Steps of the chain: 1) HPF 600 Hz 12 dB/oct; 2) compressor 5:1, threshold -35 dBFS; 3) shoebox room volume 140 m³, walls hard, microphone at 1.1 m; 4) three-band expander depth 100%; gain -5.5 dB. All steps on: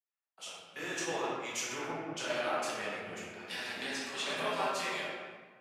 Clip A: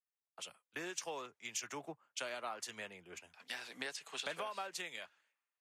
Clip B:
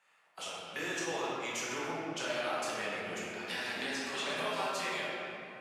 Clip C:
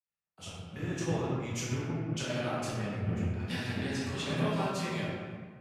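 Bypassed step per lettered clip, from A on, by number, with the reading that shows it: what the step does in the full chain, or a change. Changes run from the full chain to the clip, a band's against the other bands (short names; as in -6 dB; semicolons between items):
3, momentary loudness spread change -3 LU; 4, 8 kHz band -1.5 dB; 1, 125 Hz band +22.5 dB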